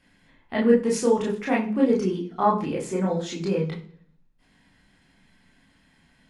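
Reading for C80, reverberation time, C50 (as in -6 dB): 14.5 dB, 0.50 s, 10.0 dB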